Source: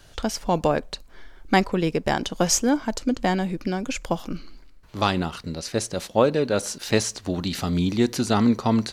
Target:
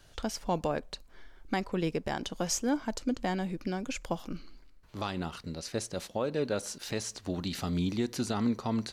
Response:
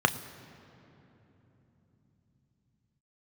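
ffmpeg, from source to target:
-af "alimiter=limit=-12dB:level=0:latency=1:release=215,volume=-7.5dB"

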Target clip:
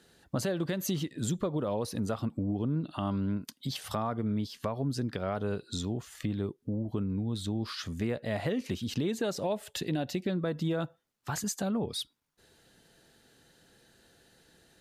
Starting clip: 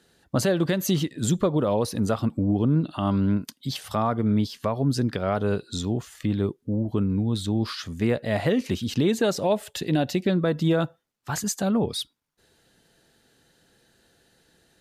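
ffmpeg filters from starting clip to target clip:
-af "acompressor=threshold=-35dB:ratio=2"

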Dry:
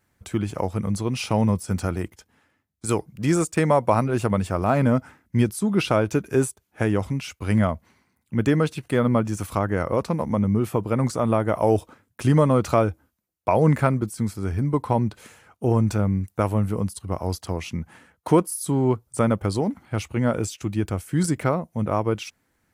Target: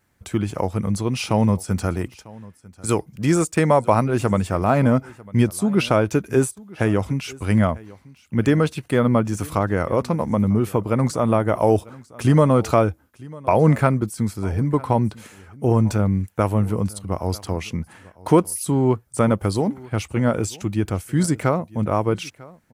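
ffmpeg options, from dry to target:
-af "aecho=1:1:947:0.0794,volume=2.5dB"

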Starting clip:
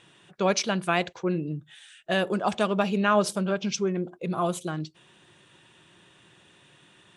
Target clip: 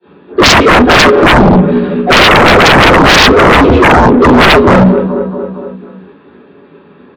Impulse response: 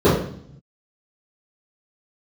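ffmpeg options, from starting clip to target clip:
-filter_complex "[0:a]agate=range=-33dB:threshold=-45dB:ratio=3:detection=peak,asplit=2[a][b];[b]acompressor=threshold=-34dB:ratio=6,volume=-1dB[c];[a][c]amix=inputs=2:normalize=0,highpass=f=340:t=q:w=0.5412,highpass=f=340:t=q:w=1.307,lowpass=f=2.8k:t=q:w=0.5176,lowpass=f=2.8k:t=q:w=0.7071,lowpass=f=2.8k:t=q:w=1.932,afreqshift=-140,asplit=2[d][e];[e]asetrate=58866,aresample=44100,atempo=0.749154,volume=-6dB[f];[d][f]amix=inputs=2:normalize=0,afreqshift=19,aecho=1:1:230|460|690|920|1150:0.133|0.0787|0.0464|0.0274|0.0162[g];[1:a]atrim=start_sample=2205,afade=t=out:st=0.14:d=0.01,atrim=end_sample=6615[h];[g][h]afir=irnorm=-1:irlink=0,acontrast=67,volume=-1dB"

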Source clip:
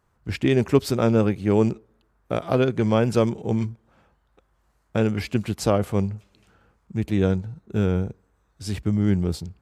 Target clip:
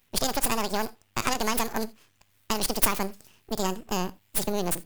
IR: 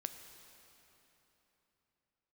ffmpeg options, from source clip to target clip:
-filter_complex "[0:a]acompressor=threshold=-20dB:ratio=6,asetrate=87318,aresample=44100,crystalizer=i=5.5:c=0,aeval=exprs='max(val(0),0)':c=same,asplit=2[a][b];[1:a]atrim=start_sample=2205,atrim=end_sample=3969[c];[b][c]afir=irnorm=-1:irlink=0,volume=5.5dB[d];[a][d]amix=inputs=2:normalize=0,volume=-9dB"

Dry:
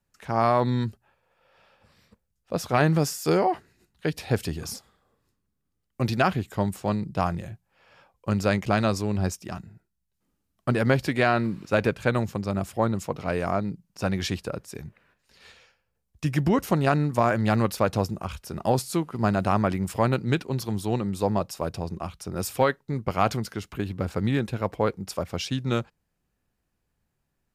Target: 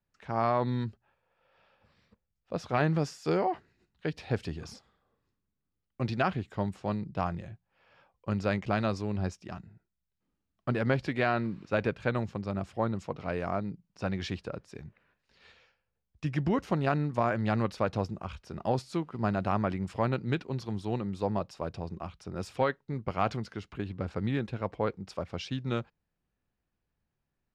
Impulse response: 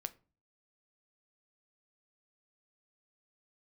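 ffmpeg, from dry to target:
-af "lowpass=4.4k,volume=-6dB"

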